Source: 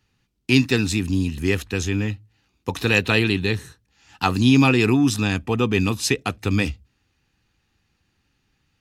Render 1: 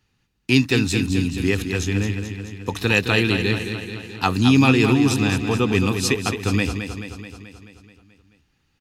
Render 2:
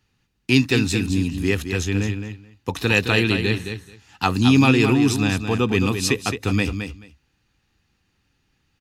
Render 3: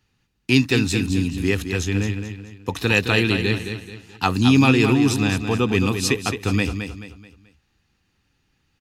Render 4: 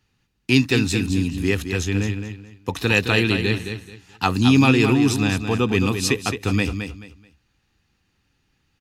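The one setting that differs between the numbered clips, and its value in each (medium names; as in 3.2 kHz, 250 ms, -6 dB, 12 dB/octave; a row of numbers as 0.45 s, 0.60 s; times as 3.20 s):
feedback delay, feedback: 61%, 15%, 37%, 25%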